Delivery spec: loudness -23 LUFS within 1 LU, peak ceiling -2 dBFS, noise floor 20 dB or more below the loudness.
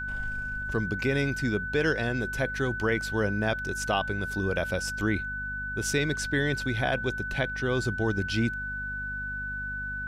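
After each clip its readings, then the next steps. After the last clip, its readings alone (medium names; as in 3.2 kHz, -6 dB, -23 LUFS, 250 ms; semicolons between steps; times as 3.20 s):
hum 50 Hz; highest harmonic 250 Hz; hum level -38 dBFS; steady tone 1.5 kHz; tone level -32 dBFS; loudness -29.0 LUFS; peak level -12.5 dBFS; loudness target -23.0 LUFS
-> hum notches 50/100/150/200/250 Hz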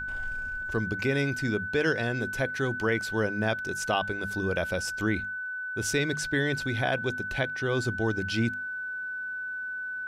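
hum not found; steady tone 1.5 kHz; tone level -32 dBFS
-> band-stop 1.5 kHz, Q 30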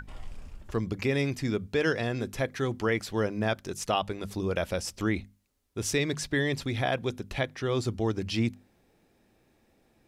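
steady tone not found; loudness -30.0 LUFS; peak level -13.5 dBFS; loudness target -23.0 LUFS
-> trim +7 dB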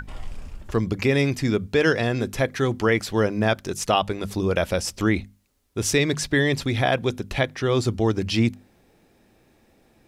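loudness -23.0 LUFS; peak level -6.5 dBFS; noise floor -60 dBFS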